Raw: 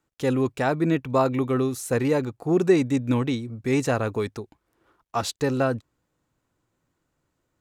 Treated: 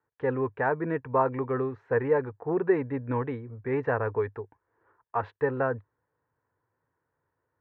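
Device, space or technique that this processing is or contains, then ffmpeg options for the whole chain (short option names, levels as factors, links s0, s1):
bass cabinet: -af "highpass=71,equalizer=f=100:t=q:w=4:g=6,equalizer=f=200:t=q:w=4:g=-9,equalizer=f=310:t=q:w=4:g=-4,equalizer=f=450:t=q:w=4:g=9,equalizer=f=950:t=q:w=4:g=10,equalizer=f=1700:t=q:w=4:g=10,lowpass=f=2000:w=0.5412,lowpass=f=2000:w=1.3066,volume=0.447"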